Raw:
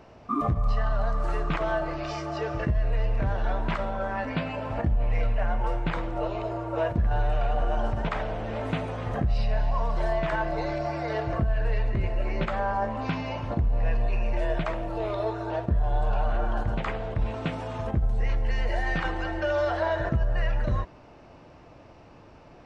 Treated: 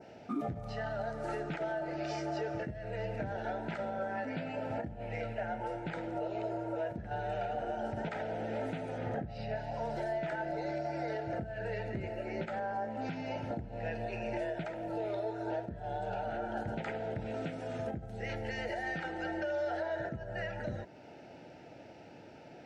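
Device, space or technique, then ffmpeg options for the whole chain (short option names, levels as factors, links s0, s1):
PA system with an anti-feedback notch: -filter_complex "[0:a]asettb=1/sr,asplit=3[s0][s1][s2];[s0]atrim=end=8.984[s3];[s1]atrim=start=8.98:end=9.56,asetpts=PTS-STARTPTS,afade=t=in:d=0.004:c=qsin,afade=t=out:st=0.576:d=0.004:c=qsin,aemphasis=mode=reproduction:type=50fm[s4];[s2]atrim=start=9.556[s5];[s3][s4]acrossfade=d=0.004:c1=hsin:c2=qsin[s6];[s6][s5]acrossfade=d=0.004:c1=qsin:c2=hsin,asettb=1/sr,asplit=3[s7][s8][s9];[s7]atrim=end=17.214[s10];[s8]atrim=start=17.21:end=18.29,asetpts=PTS-STARTPTS,afade=t=in:d=0.004:c=qsin,afade=t=out:st=1.076:d=0.004:c=qsin,bandreject=f=880:w=17[s11];[s9]atrim=start=18.286[s12];[s10][s11]acrossfade=d=0.004:c1=hsin:c2=qsin[s13];[s13][s12]acrossfade=d=0.004:c1=qsin:c2=hsin,highpass=150,asuperstop=centerf=1100:order=4:qfactor=2.6,alimiter=level_in=1.41:limit=0.0631:level=0:latency=1:release=410,volume=0.708,adynamicequalizer=threshold=0.00126:dfrequency=3200:dqfactor=1.1:tfrequency=3200:tqfactor=1.1:attack=5:release=100:ratio=0.375:range=2.5:mode=cutabove:tftype=bell"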